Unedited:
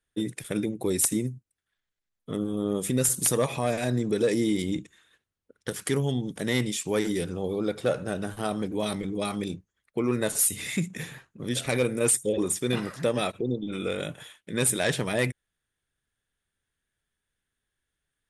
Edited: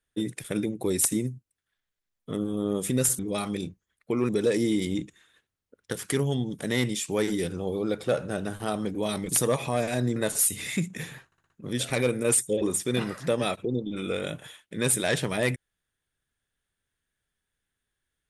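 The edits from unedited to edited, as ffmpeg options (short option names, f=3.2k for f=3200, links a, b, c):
-filter_complex "[0:a]asplit=9[a][b][c][d][e][f][g][h][i];[a]atrim=end=3.192[j];[b]atrim=start=9.058:end=10.162[k];[c]atrim=start=4.058:end=9.062[l];[d]atrim=start=3.188:end=4.062[m];[e]atrim=start=10.158:end=11.322[n];[f]atrim=start=11.258:end=11.322[o];[g]atrim=start=11.258:end=11.322[p];[h]atrim=start=11.258:end=11.322[q];[i]atrim=start=11.258[r];[j][k]acrossfade=d=0.004:c1=hsin:c2=hsin[s];[s][l]acrossfade=d=0.004:c1=hsin:c2=hsin[t];[t][m]acrossfade=d=0.004:c1=hsin:c2=hsin[u];[u][n]acrossfade=d=0.004:c1=hsin:c2=hsin[v];[v][o]acrossfade=d=0.004:c1=hsin:c2=hsin[w];[w][p]acrossfade=d=0.004:c1=hsin:c2=hsin[x];[x][q]acrossfade=d=0.004:c1=hsin:c2=hsin[y];[y][r]acrossfade=d=0.004:c1=hsin:c2=hsin"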